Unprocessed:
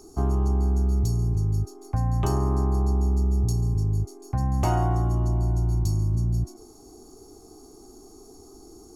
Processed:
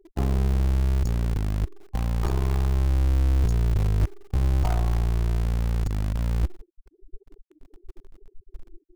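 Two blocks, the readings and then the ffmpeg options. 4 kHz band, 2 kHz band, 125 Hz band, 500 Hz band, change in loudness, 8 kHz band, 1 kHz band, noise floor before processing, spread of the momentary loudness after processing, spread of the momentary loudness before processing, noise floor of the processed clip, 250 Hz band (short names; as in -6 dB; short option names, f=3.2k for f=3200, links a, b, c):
+3.0 dB, +6.0 dB, -1.0 dB, -3.0 dB, -0.5 dB, -4.0 dB, -5.5 dB, -49 dBFS, 6 LU, 5 LU, -69 dBFS, -2.5 dB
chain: -filter_complex "[0:a]afftfilt=real='re*gte(hypot(re,im),0.0355)':imag='im*gte(hypot(re,im),0.0355)':win_size=1024:overlap=0.75,asubboost=boost=8.5:cutoff=69,areverse,acompressor=threshold=-26dB:ratio=16,areverse,aphaser=in_gain=1:out_gain=1:delay=3.4:decay=0.36:speed=0.26:type=sinusoidal,aeval=exprs='0.119*(cos(1*acos(clip(val(0)/0.119,-1,1)))-cos(1*PI/2))+0.0133*(cos(4*acos(clip(val(0)/0.119,-1,1)))-cos(4*PI/2))+0.00531*(cos(7*acos(clip(val(0)/0.119,-1,1)))-cos(7*PI/2))':c=same,asplit=2[a][b];[b]acrusher=bits=5:dc=4:mix=0:aa=0.000001,volume=-6.5dB[c];[a][c]amix=inputs=2:normalize=0"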